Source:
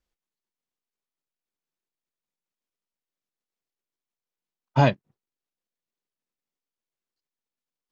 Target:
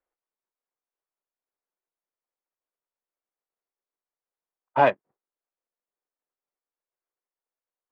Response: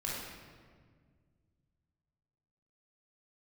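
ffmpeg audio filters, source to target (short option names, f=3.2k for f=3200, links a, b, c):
-filter_complex "[0:a]adynamicsmooth=sensitivity=3:basefreq=1.9k,acrossover=split=370 2800:gain=0.0708 1 0.0631[a][b][c];[a][b][c]amix=inputs=3:normalize=0,volume=4.5dB"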